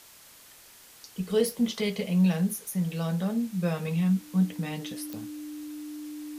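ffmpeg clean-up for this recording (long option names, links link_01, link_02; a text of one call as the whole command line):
ffmpeg -i in.wav -af "adeclick=threshold=4,bandreject=frequency=300:width=30,afwtdn=0.0028" out.wav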